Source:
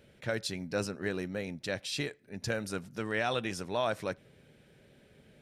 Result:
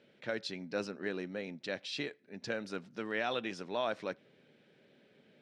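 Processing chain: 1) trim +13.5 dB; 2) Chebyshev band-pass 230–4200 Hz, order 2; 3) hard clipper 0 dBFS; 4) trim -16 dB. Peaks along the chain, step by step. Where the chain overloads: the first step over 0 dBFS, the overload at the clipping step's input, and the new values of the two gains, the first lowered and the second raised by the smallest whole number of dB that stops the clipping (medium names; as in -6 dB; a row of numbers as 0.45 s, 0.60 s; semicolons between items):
-4.5 dBFS, -4.5 dBFS, -4.5 dBFS, -20.5 dBFS; nothing clips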